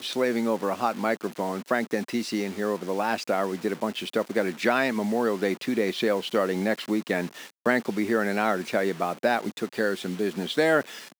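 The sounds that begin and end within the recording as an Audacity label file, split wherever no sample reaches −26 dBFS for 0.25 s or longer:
7.660000	10.810000	sound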